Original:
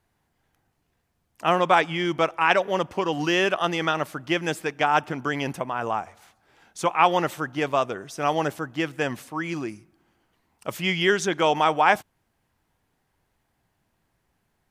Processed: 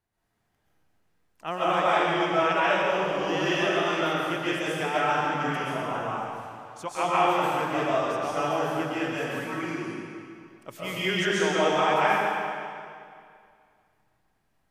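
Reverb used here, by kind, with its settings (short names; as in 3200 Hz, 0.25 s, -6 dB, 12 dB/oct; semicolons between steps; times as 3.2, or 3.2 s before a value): digital reverb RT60 2.3 s, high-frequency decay 0.9×, pre-delay 95 ms, DRR -9.5 dB; gain -11.5 dB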